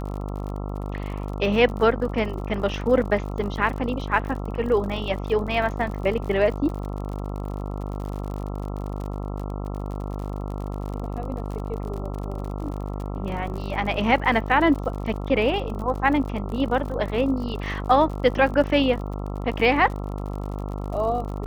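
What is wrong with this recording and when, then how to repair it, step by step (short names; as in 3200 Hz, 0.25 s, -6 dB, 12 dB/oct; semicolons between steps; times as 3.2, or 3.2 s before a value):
buzz 50 Hz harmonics 27 -30 dBFS
crackle 55/s -32 dBFS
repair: de-click; de-hum 50 Hz, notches 27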